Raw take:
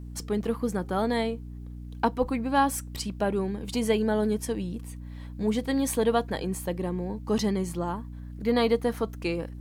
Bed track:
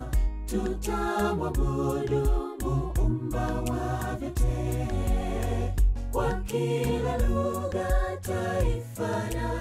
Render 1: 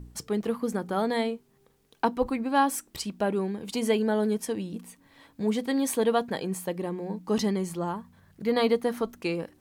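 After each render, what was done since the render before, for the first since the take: de-hum 60 Hz, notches 5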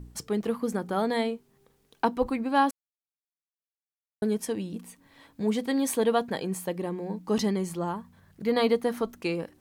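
2.71–4.22 mute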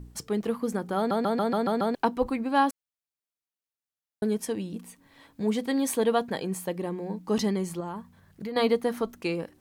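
0.97 stutter in place 0.14 s, 7 plays; 7.8–8.56 compressor, threshold -31 dBFS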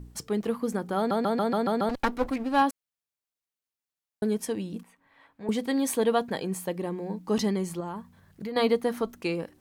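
1.89–2.62 minimum comb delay 3.6 ms; 4.83–5.49 three-band isolator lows -12 dB, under 600 Hz, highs -16 dB, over 2600 Hz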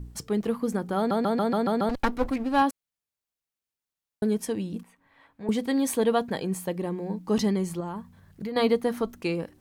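low shelf 170 Hz +6 dB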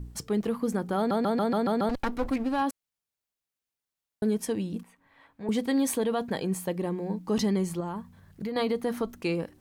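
limiter -18 dBFS, peak gain reduction 7 dB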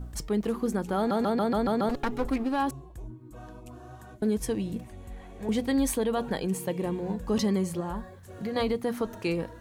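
add bed track -16.5 dB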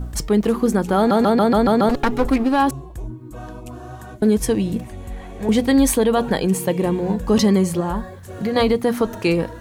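gain +10.5 dB

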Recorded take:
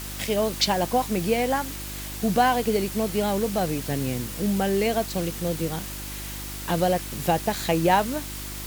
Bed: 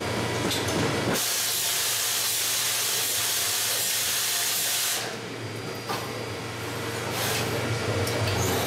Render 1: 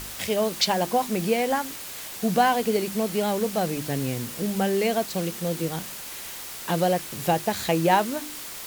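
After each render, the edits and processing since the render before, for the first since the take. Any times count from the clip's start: de-hum 50 Hz, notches 7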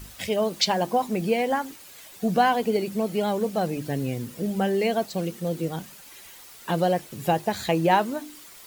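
denoiser 11 dB, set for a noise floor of -37 dBFS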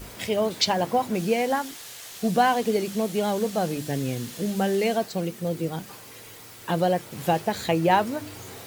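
add bed -17 dB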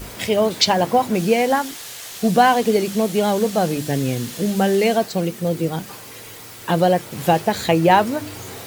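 gain +6.5 dB; limiter -2 dBFS, peak gain reduction 1 dB

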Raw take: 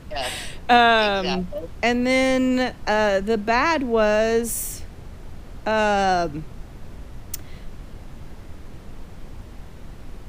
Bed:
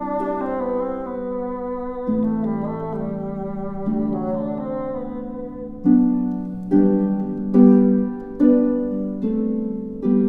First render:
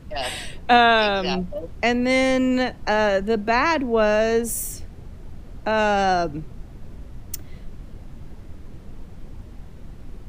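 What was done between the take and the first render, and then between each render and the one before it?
denoiser 6 dB, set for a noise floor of -41 dBFS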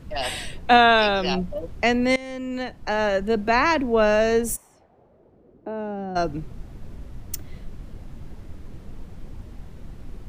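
2.16–3.43 fade in linear, from -21 dB; 4.55–6.15 band-pass 1000 Hz -> 220 Hz, Q 2.2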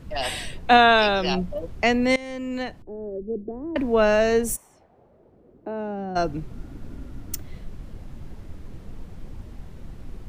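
2.82–3.76 ladder low-pass 430 Hz, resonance 60%; 6.52–7.36 small resonant body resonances 280/1400 Hz, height 10 dB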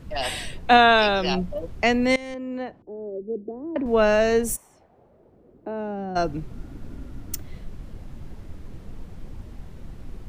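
2.34–3.86 band-pass 480 Hz, Q 0.55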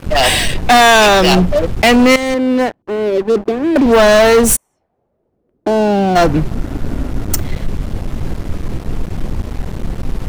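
sample leveller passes 5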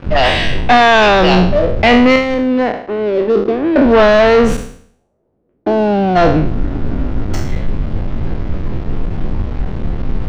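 spectral trails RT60 0.59 s; air absorption 220 m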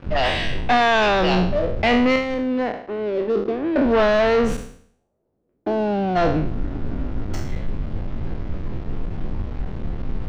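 gain -8.5 dB

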